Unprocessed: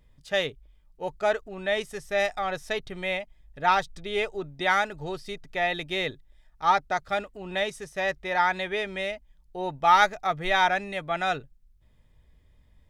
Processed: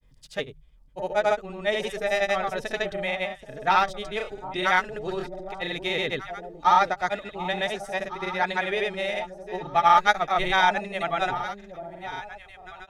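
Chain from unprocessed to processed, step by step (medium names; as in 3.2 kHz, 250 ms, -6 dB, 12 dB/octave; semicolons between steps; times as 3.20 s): hum notches 50/100/150 Hz; echo whose repeats swap between lows and highs 759 ms, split 830 Hz, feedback 50%, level -9 dB; granulator 100 ms, grains 22 per s, pitch spread up and down by 0 st; trim +3 dB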